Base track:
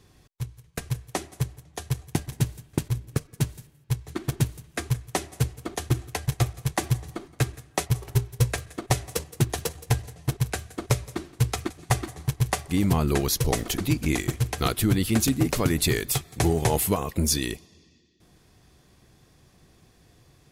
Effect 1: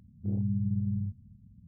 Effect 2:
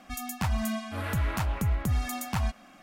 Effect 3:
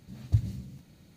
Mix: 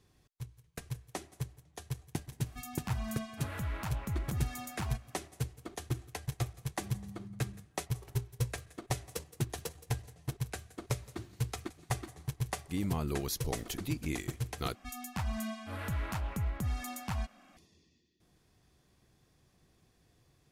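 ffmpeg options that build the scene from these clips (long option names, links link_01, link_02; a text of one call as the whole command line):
ffmpeg -i bed.wav -i cue0.wav -i cue1.wav -i cue2.wav -filter_complex "[2:a]asplit=2[link_01][link_02];[0:a]volume=-11dB[link_03];[1:a]aecho=1:1:6:0.56[link_04];[3:a]lowshelf=frequency=630:width_type=q:width=1.5:gain=-12[link_05];[link_02]aresample=32000,aresample=44100[link_06];[link_03]asplit=2[link_07][link_08];[link_07]atrim=end=14.754[link_09];[link_06]atrim=end=2.82,asetpts=PTS-STARTPTS,volume=-7dB[link_10];[link_08]atrim=start=17.566[link_11];[link_01]atrim=end=2.82,asetpts=PTS-STARTPTS,volume=-8.5dB,afade=type=in:duration=0.004:curve=hsin,afade=type=out:start_time=2.816:duration=0.004:curve=hsin,adelay=2460[link_12];[link_04]atrim=end=1.67,asetpts=PTS-STARTPTS,volume=-17.5dB,afade=type=in:duration=0.004:curve=hsin,afade=type=out:start_time=1.666:duration=0.004:curve=hsin,adelay=6540[link_13];[link_05]atrim=end=1.16,asetpts=PTS-STARTPTS,volume=-10.5dB,afade=type=in:duration=0.004:curve=hsin,afade=type=out:start_time=1.156:duration=0.004:curve=hsin,adelay=10850[link_14];[link_09][link_10]acrossfade=duration=0.004:curve1=hsin:curve2=hsin[link_15];[link_15][link_11]acrossfade=duration=0.004:curve1=hsin:curve2=hsin[link_16];[link_16][link_12][link_13][link_14]amix=inputs=4:normalize=0" out.wav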